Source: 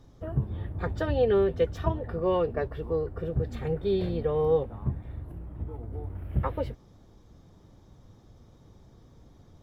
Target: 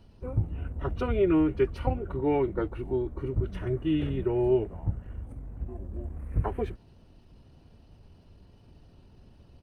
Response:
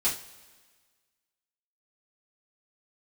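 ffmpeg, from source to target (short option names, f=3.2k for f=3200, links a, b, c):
-af "equalizer=f=2.6k:t=o:w=0.79:g=3.5,asetrate=35002,aresample=44100,atempo=1.25992"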